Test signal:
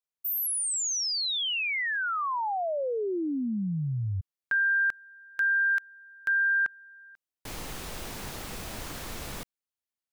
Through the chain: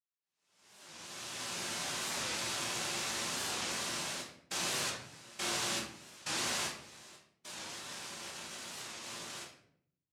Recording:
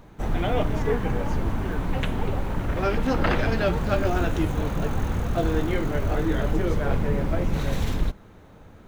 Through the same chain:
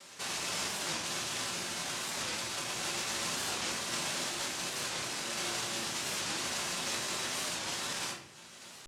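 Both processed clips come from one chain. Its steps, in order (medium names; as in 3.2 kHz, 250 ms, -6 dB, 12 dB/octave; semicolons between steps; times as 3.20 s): spectral peaks clipped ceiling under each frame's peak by 13 dB; low-pass 2.3 kHz 12 dB/octave; compression 2:1, threshold -38 dBFS; noise-vocoded speech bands 1; simulated room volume 110 m³, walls mixed, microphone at 1.2 m; warped record 45 rpm, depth 160 cents; trim -6.5 dB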